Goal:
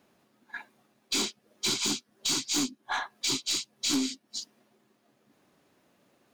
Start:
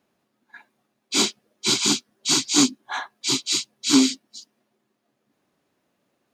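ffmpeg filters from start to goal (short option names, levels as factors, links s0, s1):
-af "acompressor=threshold=0.02:ratio=4,aeval=exprs='0.106*(cos(1*acos(clip(val(0)/0.106,-1,1)))-cos(1*PI/2))+0.0075*(cos(4*acos(clip(val(0)/0.106,-1,1)))-cos(4*PI/2))+0.0473*(cos(5*acos(clip(val(0)/0.106,-1,1)))-cos(5*PI/2))+0.0211*(cos(7*acos(clip(val(0)/0.106,-1,1)))-cos(7*PI/2))':c=same"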